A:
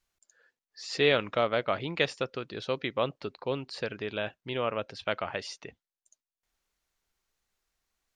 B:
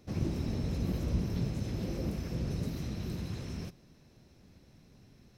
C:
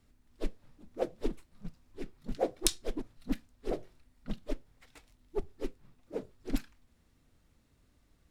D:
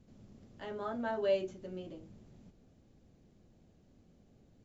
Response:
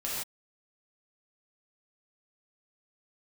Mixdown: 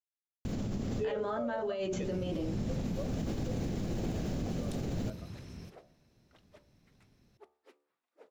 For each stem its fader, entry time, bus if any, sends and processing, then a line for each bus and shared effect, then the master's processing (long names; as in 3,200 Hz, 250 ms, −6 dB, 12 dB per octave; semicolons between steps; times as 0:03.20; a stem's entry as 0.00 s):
−4.5 dB, 0.00 s, no send, every bin expanded away from the loudest bin 2.5 to 1
−7.0 dB, 2.00 s, no send, no processing
−8.0 dB, 2.05 s, no send, high-pass filter 900 Hz 12 dB per octave; high-shelf EQ 2,600 Hz −10.5 dB
−6.5 dB, 0.45 s, no send, envelope flattener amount 100%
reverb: not used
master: hum removal 73.38 Hz, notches 17; brickwall limiter −26.5 dBFS, peak gain reduction 12 dB